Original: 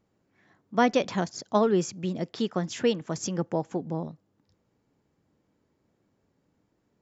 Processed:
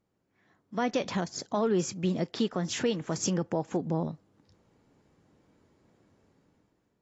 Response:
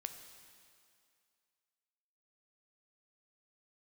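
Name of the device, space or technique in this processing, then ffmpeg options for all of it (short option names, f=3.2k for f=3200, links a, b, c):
low-bitrate web radio: -af "dynaudnorm=f=240:g=7:m=12dB,alimiter=limit=-12dB:level=0:latency=1:release=137,volume=-6dB" -ar 24000 -c:a aac -b:a 32k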